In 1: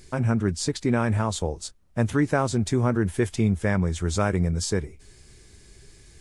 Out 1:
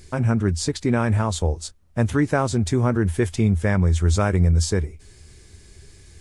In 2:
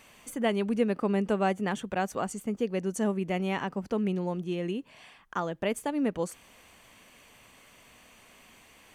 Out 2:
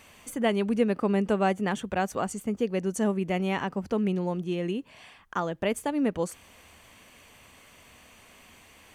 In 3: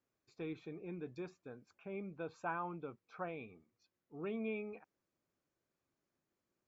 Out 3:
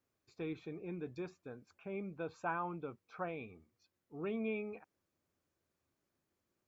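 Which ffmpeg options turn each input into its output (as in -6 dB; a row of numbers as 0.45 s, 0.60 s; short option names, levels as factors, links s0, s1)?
-af "equalizer=f=81:t=o:w=0.37:g=9.5,volume=1.26"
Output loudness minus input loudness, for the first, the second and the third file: +3.5 LU, +2.0 LU, +2.0 LU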